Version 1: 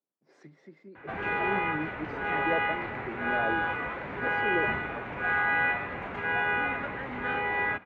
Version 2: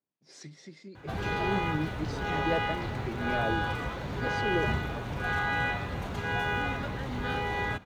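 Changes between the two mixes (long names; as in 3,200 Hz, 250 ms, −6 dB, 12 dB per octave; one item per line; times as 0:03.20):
background: add parametric band 2,300 Hz −13 dB 1.2 octaves
master: remove three-way crossover with the lows and the highs turned down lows −12 dB, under 210 Hz, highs −23 dB, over 2,000 Hz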